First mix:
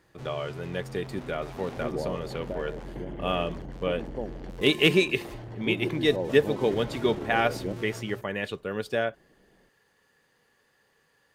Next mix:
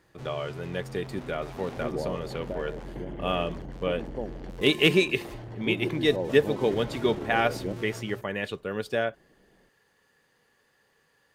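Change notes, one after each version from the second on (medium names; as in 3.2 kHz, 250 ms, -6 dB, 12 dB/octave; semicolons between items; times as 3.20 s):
no change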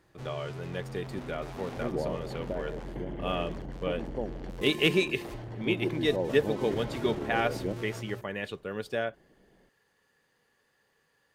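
speech -4.0 dB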